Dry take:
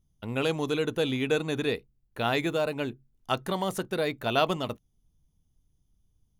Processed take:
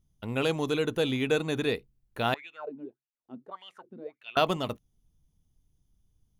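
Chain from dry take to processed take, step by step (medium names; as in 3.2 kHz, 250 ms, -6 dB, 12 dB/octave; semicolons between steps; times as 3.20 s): 2.34–4.37 s: wah-wah 1.7 Hz 230–2900 Hz, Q 8.3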